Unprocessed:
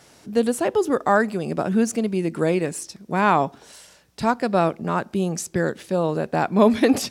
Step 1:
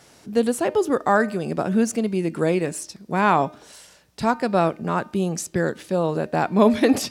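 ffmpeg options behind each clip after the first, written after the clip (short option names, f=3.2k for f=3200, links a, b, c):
-af "bandreject=f=304.6:t=h:w=4,bandreject=f=609.2:t=h:w=4,bandreject=f=913.8:t=h:w=4,bandreject=f=1.2184k:t=h:w=4,bandreject=f=1.523k:t=h:w=4,bandreject=f=1.8276k:t=h:w=4,bandreject=f=2.1322k:t=h:w=4,bandreject=f=2.4368k:t=h:w=4,bandreject=f=2.7414k:t=h:w=4,bandreject=f=3.046k:t=h:w=4,bandreject=f=3.3506k:t=h:w=4,bandreject=f=3.6552k:t=h:w=4,bandreject=f=3.9598k:t=h:w=4,bandreject=f=4.2644k:t=h:w=4,bandreject=f=4.569k:t=h:w=4,bandreject=f=4.8736k:t=h:w=4"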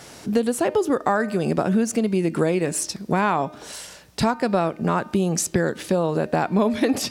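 -af "acompressor=threshold=-27dB:ratio=5,volume=9dB"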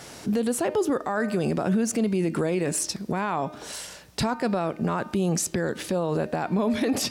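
-af "alimiter=limit=-16.5dB:level=0:latency=1:release=15"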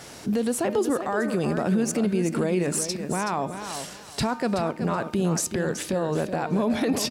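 -af "aecho=1:1:376|752|1128:0.355|0.0781|0.0172"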